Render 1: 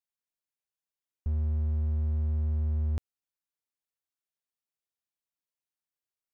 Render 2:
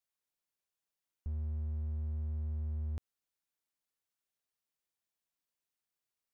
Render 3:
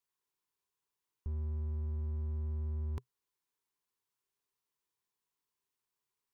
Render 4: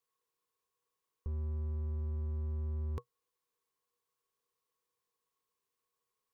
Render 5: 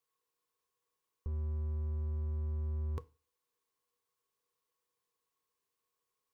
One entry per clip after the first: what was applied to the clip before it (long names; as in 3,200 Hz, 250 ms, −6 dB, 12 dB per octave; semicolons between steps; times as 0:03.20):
brickwall limiter −33 dBFS, peak gain reduction 10 dB; level +1.5 dB
thirty-one-band graphic EQ 125 Hz +6 dB, 400 Hz +9 dB, 630 Hz −8 dB, 1,000 Hz +10 dB
hollow resonant body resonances 480/1,100 Hz, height 17 dB, ringing for 95 ms
feedback delay network reverb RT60 0.36 s, low-frequency decay 0.95×, high-frequency decay 1×, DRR 14.5 dB